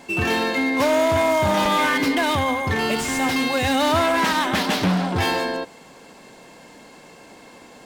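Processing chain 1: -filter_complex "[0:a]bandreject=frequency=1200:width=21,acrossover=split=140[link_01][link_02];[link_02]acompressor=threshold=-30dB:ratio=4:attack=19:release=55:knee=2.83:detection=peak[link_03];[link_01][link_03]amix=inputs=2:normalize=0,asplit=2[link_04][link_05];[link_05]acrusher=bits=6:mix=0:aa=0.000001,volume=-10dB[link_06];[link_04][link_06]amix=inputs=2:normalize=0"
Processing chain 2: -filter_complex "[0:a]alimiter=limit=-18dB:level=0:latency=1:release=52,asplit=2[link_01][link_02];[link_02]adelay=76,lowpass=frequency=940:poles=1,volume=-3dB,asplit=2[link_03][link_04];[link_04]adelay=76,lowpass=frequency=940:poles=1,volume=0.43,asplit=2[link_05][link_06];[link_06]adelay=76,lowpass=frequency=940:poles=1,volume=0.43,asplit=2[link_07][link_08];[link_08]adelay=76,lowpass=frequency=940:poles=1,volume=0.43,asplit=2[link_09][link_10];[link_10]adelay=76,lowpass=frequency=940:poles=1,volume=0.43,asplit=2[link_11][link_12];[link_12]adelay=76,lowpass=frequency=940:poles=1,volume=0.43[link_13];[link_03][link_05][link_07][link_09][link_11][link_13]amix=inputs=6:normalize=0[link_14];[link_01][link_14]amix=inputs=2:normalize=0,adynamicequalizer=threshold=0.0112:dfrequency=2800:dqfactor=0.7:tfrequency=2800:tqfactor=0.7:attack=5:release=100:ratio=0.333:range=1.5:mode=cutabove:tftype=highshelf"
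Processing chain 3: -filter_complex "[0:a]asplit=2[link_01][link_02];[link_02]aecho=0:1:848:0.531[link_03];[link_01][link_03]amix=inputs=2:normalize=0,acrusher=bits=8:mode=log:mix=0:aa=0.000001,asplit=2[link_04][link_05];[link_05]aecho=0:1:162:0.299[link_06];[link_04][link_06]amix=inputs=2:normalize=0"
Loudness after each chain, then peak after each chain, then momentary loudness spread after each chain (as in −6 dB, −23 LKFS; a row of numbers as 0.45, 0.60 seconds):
−24.5, −24.5, −19.0 LKFS; −10.5, −13.5, −6.0 dBFS; 19, 20, 9 LU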